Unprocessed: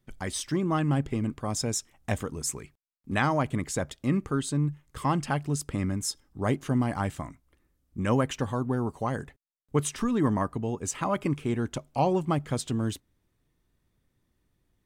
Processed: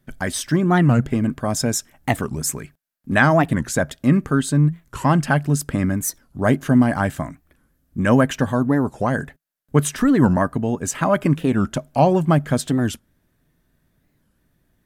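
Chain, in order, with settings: graphic EQ with 31 bands 160 Hz +7 dB, 250 Hz +6 dB, 630 Hz +7 dB, 1.6 kHz +9 dB, 12.5 kHz +9 dB; warped record 45 rpm, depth 250 cents; trim +6 dB

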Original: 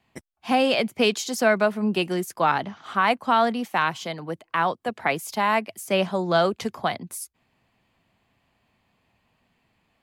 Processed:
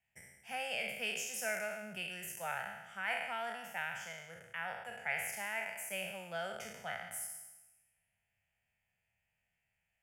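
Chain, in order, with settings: spectral sustain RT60 1.07 s; amplifier tone stack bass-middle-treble 5-5-5; static phaser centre 1.1 kHz, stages 6; trim -3 dB

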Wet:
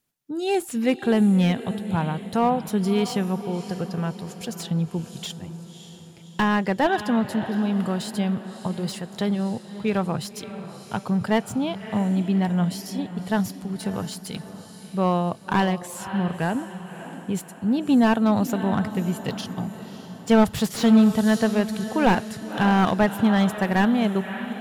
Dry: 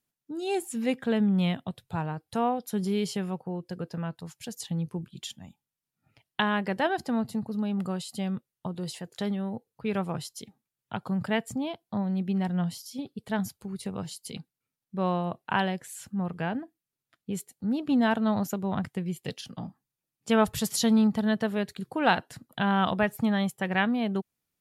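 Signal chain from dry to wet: echo that smears into a reverb 589 ms, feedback 50%, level -12.5 dB; slew-rate limiter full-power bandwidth 81 Hz; trim +6 dB

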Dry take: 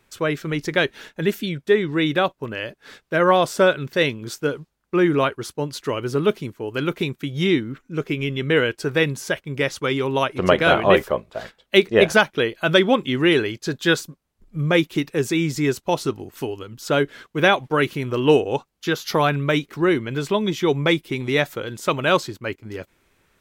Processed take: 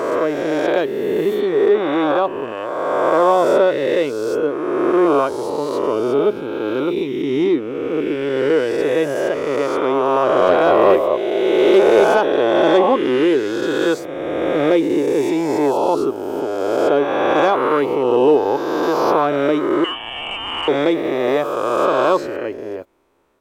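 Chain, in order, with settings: reverse spectral sustain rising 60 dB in 2.34 s; 19.84–20.68 s: frequency inversion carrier 3.3 kHz; saturation -4.5 dBFS, distortion -19 dB; high-order bell 550 Hz +12.5 dB 2.5 oct; trim -10.5 dB

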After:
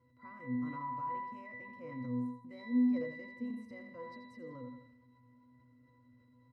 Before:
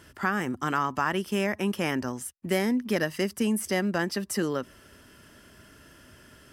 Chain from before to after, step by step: pitch-class resonator B, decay 0.56 s; feedback delay 84 ms, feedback 41%, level -8.5 dB; transient shaper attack -2 dB, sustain +5 dB; trim +4 dB

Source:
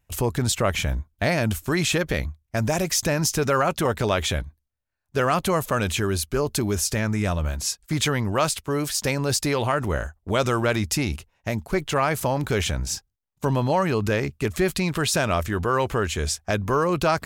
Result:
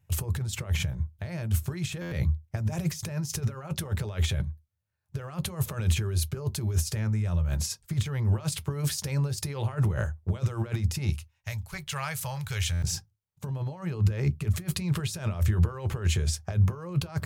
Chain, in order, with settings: 11.09–12.84 s: amplifier tone stack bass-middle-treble 10-0-10; compressor with a negative ratio -27 dBFS, ratio -0.5; on a send at -11.5 dB: reverberation, pre-delay 3 ms; on the sum: buffer glitch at 2.01/12.72 s, samples 512, times 8; trim -7.5 dB

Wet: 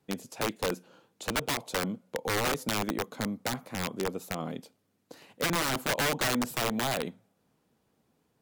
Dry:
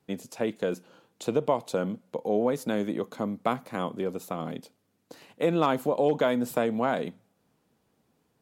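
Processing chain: integer overflow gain 20.5 dB; trim -1.5 dB

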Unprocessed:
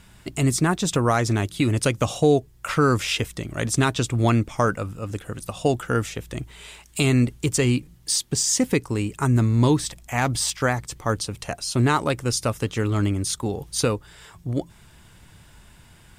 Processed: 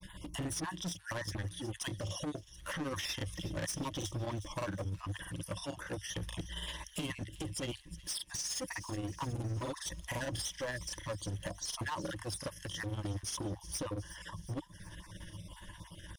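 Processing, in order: random holes in the spectrogram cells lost 32%; rippled EQ curve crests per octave 1.2, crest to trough 15 dB; compression 3:1, threshold -34 dBFS, peak gain reduction 16.5 dB; hard clipper -34 dBFS, distortion -7 dB; granulator 100 ms, grains 17 per s, spray 29 ms, pitch spread up and down by 0 st; on a send: feedback echo behind a high-pass 366 ms, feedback 58%, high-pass 2.7 kHz, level -14 dB; on the sum: trim +1 dB

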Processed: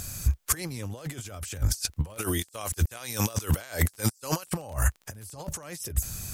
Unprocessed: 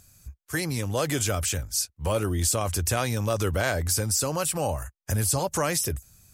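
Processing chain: 2.17–4.50 s: tilt EQ +3 dB/octave; compressor with a negative ratio -37 dBFS, ratio -0.5; crackle 19 per s -43 dBFS; trim +7 dB

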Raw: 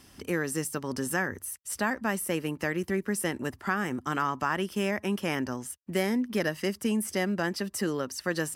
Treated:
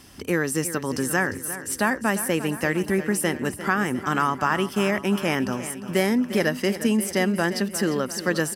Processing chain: feedback delay 351 ms, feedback 58%, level -13 dB; trim +6 dB

